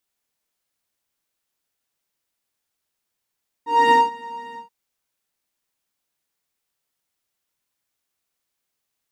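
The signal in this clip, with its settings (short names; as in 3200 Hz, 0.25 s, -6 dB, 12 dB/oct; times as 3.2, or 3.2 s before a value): synth patch with pulse-width modulation A#5, sub -21 dB, noise -18.5 dB, filter bandpass, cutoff 210 Hz, Q 12, filter envelope 0.5 oct, filter decay 0.47 s, attack 0.252 s, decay 0.19 s, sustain -22 dB, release 0.14 s, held 0.89 s, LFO 3.3 Hz, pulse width 32%, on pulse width 18%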